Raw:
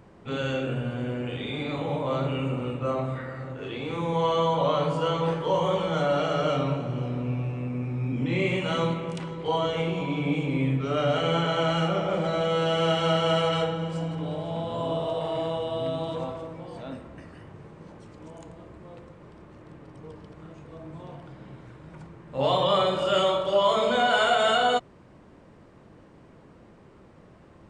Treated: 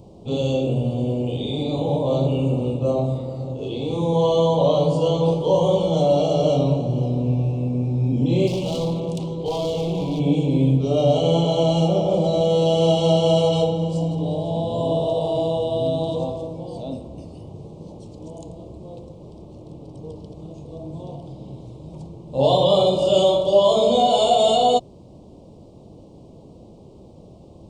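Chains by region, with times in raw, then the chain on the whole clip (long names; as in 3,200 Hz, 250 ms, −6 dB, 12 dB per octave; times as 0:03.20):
0:08.47–0:10.20: hard clipping −27.5 dBFS + highs frequency-modulated by the lows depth 0.1 ms
whole clip: Chebyshev band-stop filter 710–3,800 Hz, order 2; parametric band 78 Hz +2.5 dB 2 octaves; level +7.5 dB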